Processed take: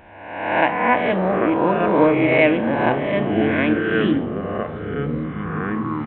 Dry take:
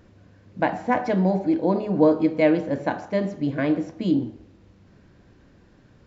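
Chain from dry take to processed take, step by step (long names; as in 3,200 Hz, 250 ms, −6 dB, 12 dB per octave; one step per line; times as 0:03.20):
peak hold with a rise ahead of every peak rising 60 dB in 1.05 s
graphic EQ with 15 bands 160 Hz −5 dB, 1,000 Hz +4 dB, 2,500 Hz +12 dB
delay with pitch and tempo change per echo 536 ms, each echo −6 semitones, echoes 3, each echo −6 dB
downsampling to 8,000 Hz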